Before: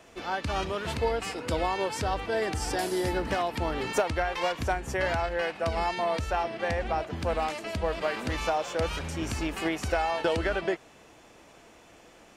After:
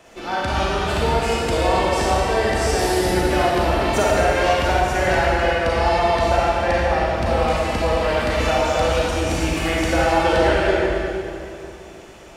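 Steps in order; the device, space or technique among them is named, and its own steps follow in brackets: stairwell (reverberation RT60 2.5 s, pre-delay 31 ms, DRR -6 dB); trim +3.5 dB

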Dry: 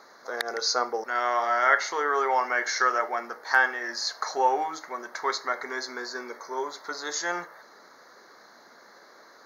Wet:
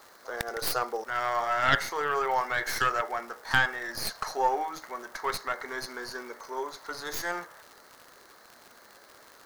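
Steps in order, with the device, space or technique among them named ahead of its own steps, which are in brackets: record under a worn stylus (tracing distortion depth 0.19 ms; crackle 110 per s -35 dBFS; white noise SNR 32 dB); trim -3 dB

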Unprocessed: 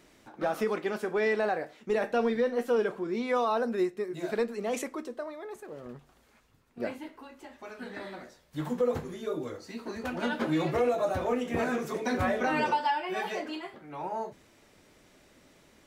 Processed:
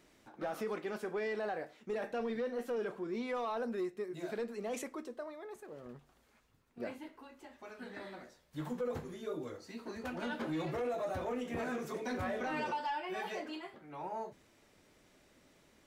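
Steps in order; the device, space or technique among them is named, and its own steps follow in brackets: soft clipper into limiter (saturation -21 dBFS, distortion -19 dB; peak limiter -24.5 dBFS, peak gain reduction 3 dB); trim -6 dB

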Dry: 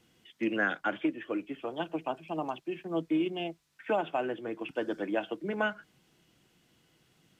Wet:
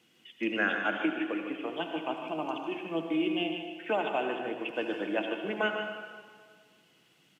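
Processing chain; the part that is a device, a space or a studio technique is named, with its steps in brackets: PA in a hall (high-pass 170 Hz 12 dB/octave; peaking EQ 2.7 kHz +6 dB 0.78 oct; delay 150 ms -9.5 dB; reverberation RT60 1.7 s, pre-delay 63 ms, DRR 4.5 dB); trim -1 dB

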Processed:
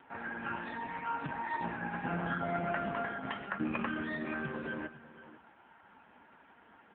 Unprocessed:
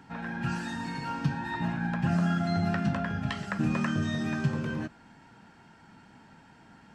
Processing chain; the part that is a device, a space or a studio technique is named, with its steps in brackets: satellite phone (band-pass 350–3000 Hz; delay 496 ms -16 dB; trim +1.5 dB; AMR-NB 5.9 kbps 8 kHz)

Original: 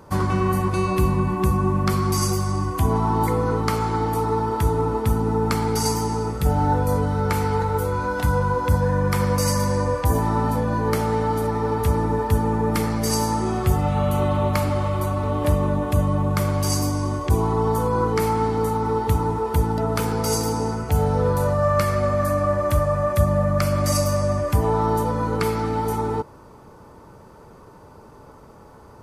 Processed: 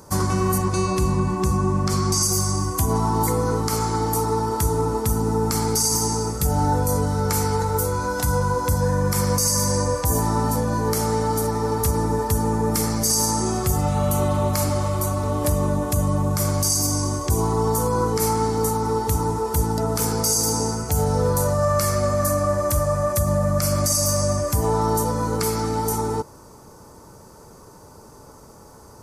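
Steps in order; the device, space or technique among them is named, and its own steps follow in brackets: 0.58–2.23 s: low-pass 7.5 kHz 12 dB/octave; over-bright horn tweeter (resonant high shelf 4.3 kHz +11 dB, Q 1.5; peak limiter -10.5 dBFS, peak gain reduction 9.5 dB)

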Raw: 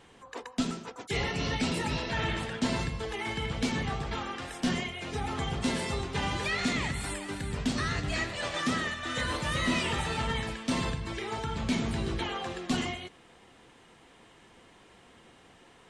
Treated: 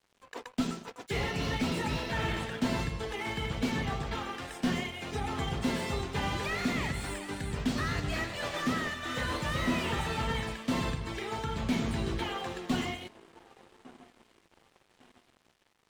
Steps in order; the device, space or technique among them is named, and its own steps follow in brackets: feedback echo behind a band-pass 1152 ms, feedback 48%, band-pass 530 Hz, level -15 dB; early transistor amplifier (crossover distortion -52 dBFS; slew-rate limiter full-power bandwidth 50 Hz)

